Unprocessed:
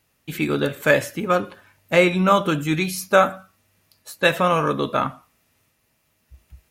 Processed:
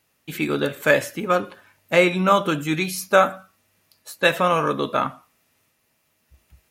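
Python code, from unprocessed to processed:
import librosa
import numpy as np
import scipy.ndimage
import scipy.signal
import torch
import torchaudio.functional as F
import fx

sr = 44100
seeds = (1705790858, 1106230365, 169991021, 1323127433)

y = fx.low_shelf(x, sr, hz=110.0, db=-10.0)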